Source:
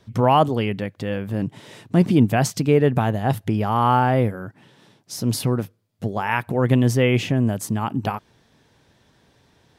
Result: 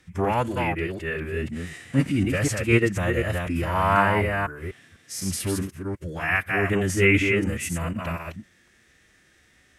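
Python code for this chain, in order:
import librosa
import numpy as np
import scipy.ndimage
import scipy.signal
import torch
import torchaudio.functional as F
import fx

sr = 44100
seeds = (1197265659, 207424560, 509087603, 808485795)

y = fx.reverse_delay(x, sr, ms=248, wet_db=-3.5)
y = fx.graphic_eq(y, sr, hz=(125, 250, 500, 1000, 2000, 4000, 8000), db=(-8, -5, -4, -8, 11, -6, 8))
y = fx.hpss(y, sr, part='percussive', gain_db=-12)
y = fx.pitch_keep_formants(y, sr, semitones=-4.0)
y = y * 10.0 ** (3.0 / 20.0)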